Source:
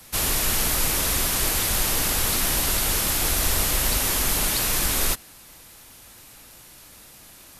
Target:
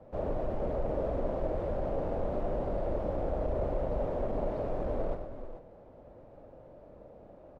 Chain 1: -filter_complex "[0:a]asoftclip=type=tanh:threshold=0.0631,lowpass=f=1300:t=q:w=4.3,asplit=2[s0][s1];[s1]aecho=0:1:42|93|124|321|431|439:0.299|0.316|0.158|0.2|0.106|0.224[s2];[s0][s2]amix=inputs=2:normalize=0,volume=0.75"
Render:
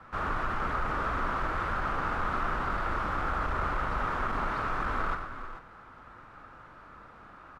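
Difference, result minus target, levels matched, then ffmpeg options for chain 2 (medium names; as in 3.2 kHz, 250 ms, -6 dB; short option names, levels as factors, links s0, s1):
500 Hz band -10.5 dB
-filter_complex "[0:a]asoftclip=type=tanh:threshold=0.0631,lowpass=f=580:t=q:w=4.3,asplit=2[s0][s1];[s1]aecho=0:1:42|93|124|321|431|439:0.299|0.316|0.158|0.2|0.106|0.224[s2];[s0][s2]amix=inputs=2:normalize=0,volume=0.75"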